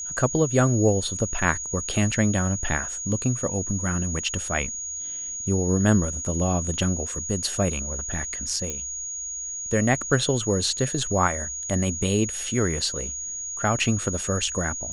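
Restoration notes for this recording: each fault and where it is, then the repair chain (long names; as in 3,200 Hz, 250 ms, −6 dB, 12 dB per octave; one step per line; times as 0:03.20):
whistle 6,700 Hz −30 dBFS
0:08.70: click −15 dBFS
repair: click removal
notch filter 6,700 Hz, Q 30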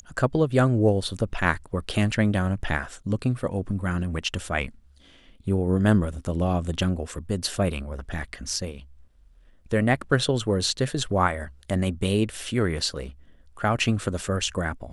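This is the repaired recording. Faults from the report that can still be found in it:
none of them is left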